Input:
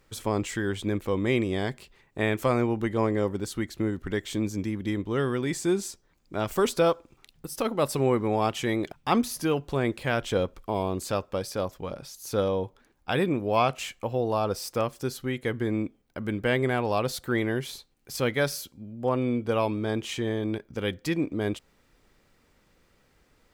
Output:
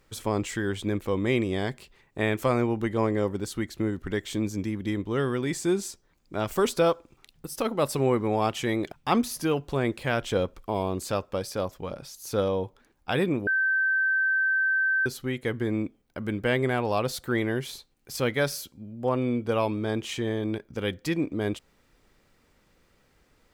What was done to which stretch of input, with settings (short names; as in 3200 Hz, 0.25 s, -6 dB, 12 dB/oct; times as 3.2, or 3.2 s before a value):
13.47–15.06 bleep 1550 Hz -21 dBFS